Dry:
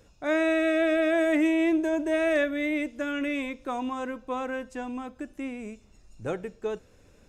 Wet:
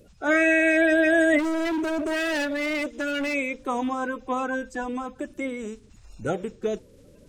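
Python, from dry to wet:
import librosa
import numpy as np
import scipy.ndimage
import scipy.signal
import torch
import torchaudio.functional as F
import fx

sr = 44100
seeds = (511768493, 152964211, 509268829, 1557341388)

y = fx.spec_quant(x, sr, step_db=30)
y = fx.overload_stage(y, sr, gain_db=29.0, at=(1.38, 3.33), fade=0.02)
y = F.gain(torch.from_numpy(y), 5.0).numpy()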